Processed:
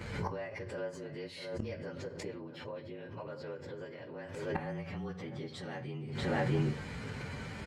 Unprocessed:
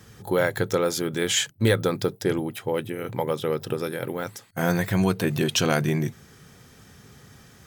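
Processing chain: frequency axis rescaled in octaves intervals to 111%; tilt EQ +2 dB/octave; compression 2:1, threshold -30 dBFS, peak gain reduction 6.5 dB; echo from a far wall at 110 m, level -15 dB; inverted gate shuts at -34 dBFS, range -26 dB; tape spacing loss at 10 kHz 30 dB; reverberation RT60 0.35 s, pre-delay 7 ms, DRR 9.5 dB; swell ahead of each attack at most 53 dB/s; trim +16.5 dB

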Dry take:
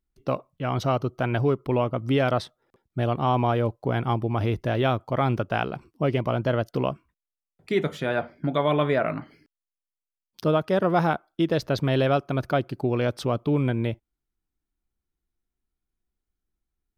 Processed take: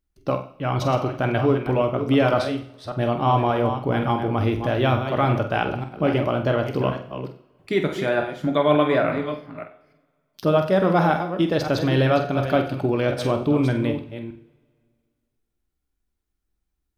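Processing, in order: chunks repeated in reverse 292 ms, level -9 dB; flutter echo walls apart 8 m, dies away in 0.3 s; two-slope reverb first 0.54 s, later 2.1 s, from -20 dB, DRR 8.5 dB; trim +2 dB

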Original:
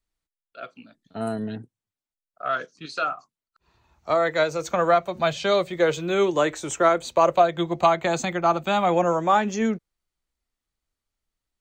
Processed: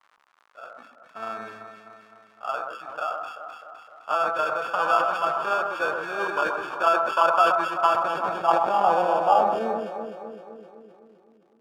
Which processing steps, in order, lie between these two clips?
sample-and-hold 22×; echo whose repeats swap between lows and highs 128 ms, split 1.6 kHz, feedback 76%, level -5 dB; crackle 120 per s -36 dBFS; band-pass sweep 1.2 kHz -> 360 Hz, 7.82–11.44 s; decay stretcher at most 57 dB/s; trim +3.5 dB

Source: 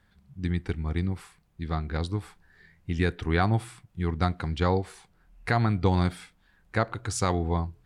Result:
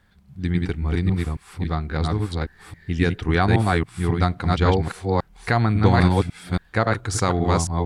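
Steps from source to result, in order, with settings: chunks repeated in reverse 274 ms, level -1 dB; trim +4.5 dB

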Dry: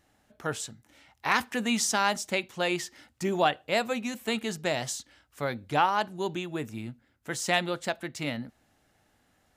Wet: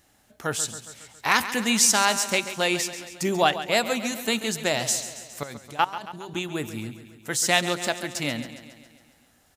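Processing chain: treble shelf 4.2 kHz +9.5 dB; 5.43–6.35 s: level held to a coarse grid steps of 21 dB; feedback delay 137 ms, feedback 60%, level -12.5 dB; trim +3 dB

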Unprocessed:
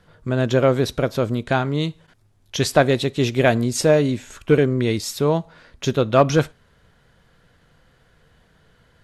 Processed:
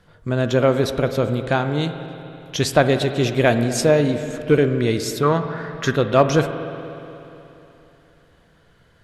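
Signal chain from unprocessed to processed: 5.23–5.96 s: high-order bell 1.5 kHz +14.5 dB 1 oct; spring tank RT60 3.2 s, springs 48/60 ms, chirp 60 ms, DRR 8.5 dB

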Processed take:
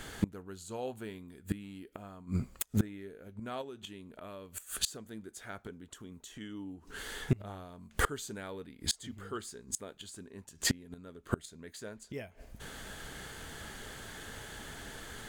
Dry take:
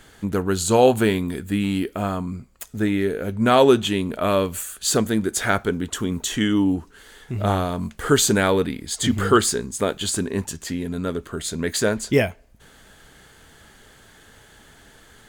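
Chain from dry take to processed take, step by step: 3.61–5.11 s: compression 6:1, threshold -18 dBFS, peak gain reduction 8.5 dB; inverted gate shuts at -19 dBFS, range -28 dB; trim +4 dB

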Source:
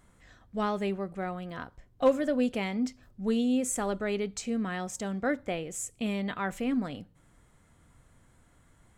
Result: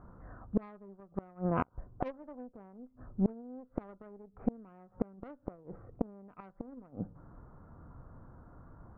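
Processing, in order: steep low-pass 1.4 kHz 48 dB/octave; Chebyshev shaper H 3 -17 dB, 4 -20 dB, 8 -32 dB, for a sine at -13 dBFS; inverted gate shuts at -29 dBFS, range -31 dB; trim +13.5 dB

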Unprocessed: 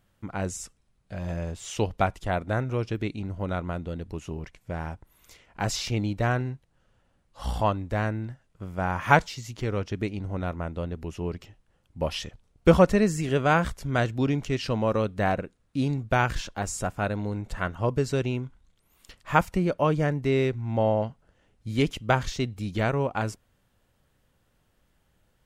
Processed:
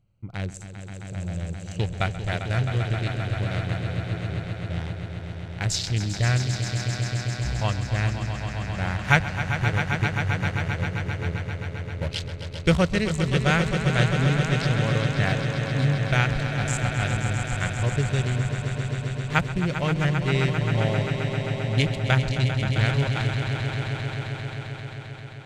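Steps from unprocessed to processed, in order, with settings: local Wiener filter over 25 samples; graphic EQ 125/250/500/1000/2000/4000/8000 Hz +8/-6/-3/-7/+7/+7/+10 dB; on a send: echo with a slow build-up 132 ms, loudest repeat 5, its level -9.5 dB; on the sum: trim -1 dB

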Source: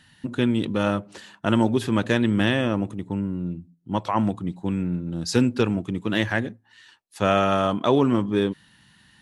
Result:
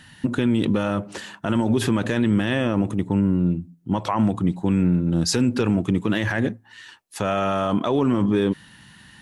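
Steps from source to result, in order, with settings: peaking EQ 4.1 kHz -3 dB 0.77 oct; peak limiter -20 dBFS, peak gain reduction 13.5 dB; trim +8.5 dB

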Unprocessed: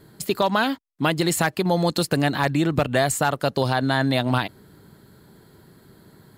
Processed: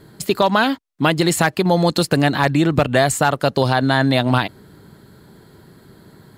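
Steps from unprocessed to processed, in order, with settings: treble shelf 11 kHz -6.5 dB; trim +5 dB

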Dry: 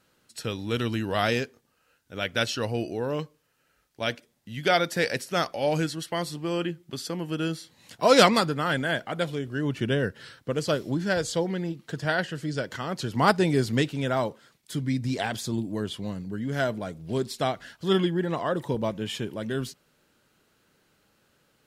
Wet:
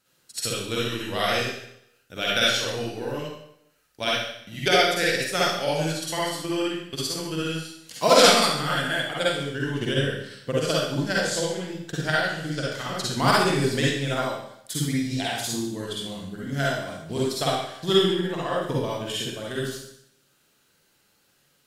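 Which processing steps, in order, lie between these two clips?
treble shelf 2.6 kHz +9.5 dB; transient shaper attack +9 dB, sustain -4 dB; reverberation RT60 0.75 s, pre-delay 44 ms, DRR -6 dB; trim -9.5 dB

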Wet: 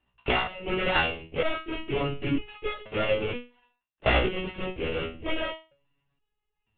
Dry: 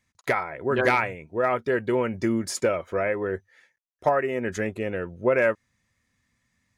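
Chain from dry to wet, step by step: sorted samples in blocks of 16 samples; LPC vocoder at 8 kHz whisper; resonator arpeggio 2.1 Hz 62–420 Hz; trim +8.5 dB

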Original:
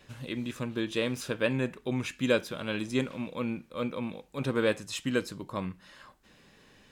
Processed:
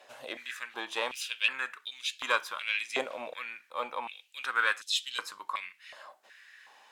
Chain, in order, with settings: Chebyshev shaper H 6 -28 dB, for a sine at -11 dBFS; step-sequenced high-pass 2.7 Hz 660–3600 Hz

